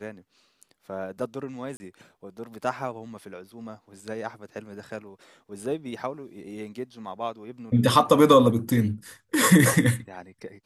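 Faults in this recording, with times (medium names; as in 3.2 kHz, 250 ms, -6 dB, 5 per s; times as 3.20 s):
1.77–1.80 s: dropout 30 ms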